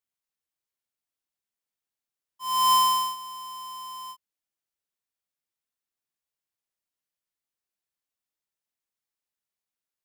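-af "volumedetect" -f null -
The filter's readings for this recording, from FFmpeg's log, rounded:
mean_volume: -33.4 dB
max_volume: -17.8 dB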